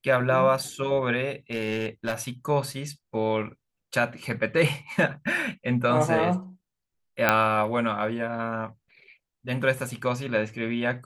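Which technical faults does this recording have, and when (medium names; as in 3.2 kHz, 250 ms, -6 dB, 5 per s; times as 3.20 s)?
1.51–2.29 s: clipped -21.5 dBFS
7.29 s: pop -5 dBFS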